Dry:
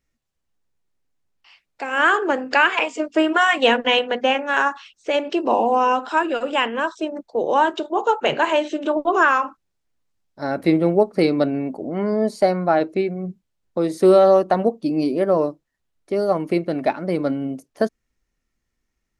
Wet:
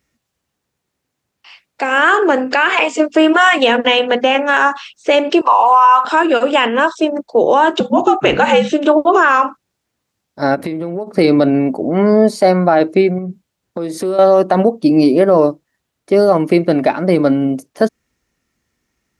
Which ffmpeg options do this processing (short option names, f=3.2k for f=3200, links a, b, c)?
-filter_complex "[0:a]asettb=1/sr,asplit=3[a][b][c];[a]atrim=end=5.414[d];[b]atrim=start=5.41:end=6.05,asetpts=PTS-STARTPTS,afade=t=in:d=0.004:c=qsin,afade=t=out:st=0.636:d=0.004:c=qsin,highpass=f=1.1k:t=q:w=4.9[e];[c]atrim=start=6.046[f];[d][e]acrossfade=d=0.004:c1=hsin:c2=qsin[g];[g][f]acrossfade=d=0.004:c1=qsin:c2=hsin,asettb=1/sr,asplit=3[h][i][j];[h]atrim=end=7.804[k];[i]atrim=start=7.8:end=8.72,asetpts=PTS-STARTPTS,afade=t=in:d=0.004:c=qsin,afade=t=out:st=0.916:d=0.004:c=qsin,afreqshift=-97[l];[j]atrim=start=8.716[m];[k][l]acrossfade=d=0.004:c1=hsin:c2=qsin[n];[n][m]acrossfade=d=0.004:c1=qsin:c2=hsin,asplit=3[o][p][q];[o]afade=t=out:st=10.54:d=0.02[r];[p]acompressor=threshold=-28dB:ratio=16:attack=3.2:release=140:knee=1:detection=peak,afade=t=in:st=10.54:d=0.02,afade=t=out:st=11.06:d=0.02[s];[q]afade=t=in:st=11.06:d=0.02[t];[r][s][t]amix=inputs=3:normalize=0,asettb=1/sr,asplit=3[u][v][w];[u]atrim=end=13.184[x];[v]atrim=start=13.18:end=14.19,asetpts=PTS-STARTPTS,afade=t=in:d=0.004:c=qsin,afade=t=out:st=1.006:d=0.004:c=qsin,acompressor=threshold=-32dB:ratio=3:attack=3.2:release=140:knee=1:detection=peak[y];[w]atrim=start=14.186[z];[x][y]acrossfade=d=0.004:c1=hsin:c2=qsin[aa];[aa][z]acrossfade=d=0.004:c1=qsin:c2=hsin,highpass=81,alimiter=level_in=11.5dB:limit=-1dB:release=50:level=0:latency=1,volume=-1dB"